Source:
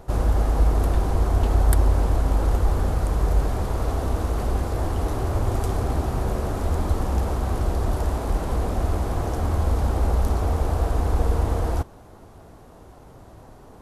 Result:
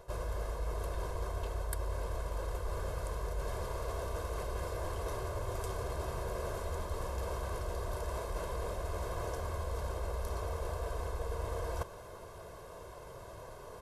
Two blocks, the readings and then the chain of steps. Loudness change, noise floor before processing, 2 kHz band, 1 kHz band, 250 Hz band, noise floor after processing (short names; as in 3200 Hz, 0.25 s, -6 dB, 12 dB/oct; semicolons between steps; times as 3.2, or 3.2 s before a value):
-15.0 dB, -47 dBFS, -8.0 dB, -11.5 dB, -19.5 dB, -49 dBFS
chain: low shelf 250 Hz -10.5 dB; comb 1.9 ms, depth 75%; reverse; compressor 5:1, threshold -35 dBFS, peak gain reduction 16 dB; reverse